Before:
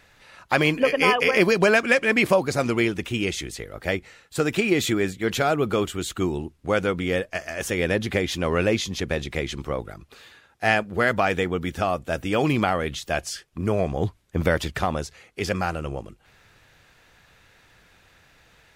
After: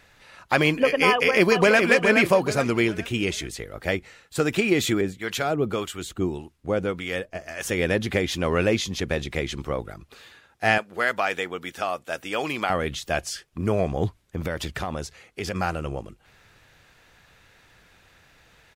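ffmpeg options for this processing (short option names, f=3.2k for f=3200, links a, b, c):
-filter_complex "[0:a]asplit=2[a][b];[b]afade=t=in:st=1.09:d=0.01,afade=t=out:st=1.82:d=0.01,aecho=0:1:420|840|1260|1680:0.530884|0.18581|0.0650333|0.0227617[c];[a][c]amix=inputs=2:normalize=0,asettb=1/sr,asplit=3[d][e][f];[d]atrim=end=5.014[g];[e]atrim=start=5.01:end=7.65,asetpts=PTS-STARTPTS,afade=t=in:d=0.004:c=qsin,afade=t=out:st=2.636:d=0.004:c=qsin,acrossover=split=750[h][i];[h]aeval=exprs='val(0)*(1-0.7/2+0.7/2*cos(2*PI*1.7*n/s))':c=same[j];[i]aeval=exprs='val(0)*(1-0.7/2-0.7/2*cos(2*PI*1.7*n/s))':c=same[k];[j][k]amix=inputs=2:normalize=0[l];[f]atrim=start=7.646[m];[g][l]acrossfade=d=0.004:c1=hsin:c2=qsin[n];[n][m]acrossfade=d=0.004:c1=qsin:c2=hsin,asettb=1/sr,asplit=3[o][p][q];[o]atrim=end=10.784[r];[p]atrim=start=10.78:end=12.7,asetpts=PTS-STARTPTS,afade=t=in:d=0.004:c=qsin,afade=t=out:st=1.916:d=0.004:c=qsin,highpass=f=790:p=1[s];[q]atrim=start=12.696[t];[r][s]acrossfade=d=0.004:c1=hsin:c2=qsin[u];[u][t]acrossfade=d=0.004:c1=qsin:c2=hsin,asettb=1/sr,asplit=3[v][w][x];[v]atrim=end=14.214[y];[w]atrim=start=14.21:end=15.56,asetpts=PTS-STARTPTS,afade=t=in:d=0.004:c=qsin,afade=t=out:st=1.346:d=0.004:c=qsin,acompressor=threshold=-26dB:ratio=3:attack=3.2:release=140:knee=1:detection=peak[z];[x]atrim=start=15.556[aa];[y][z]acrossfade=d=0.004:c1=hsin:c2=qsin[ab];[ab][aa]acrossfade=d=0.004:c1=qsin:c2=hsin"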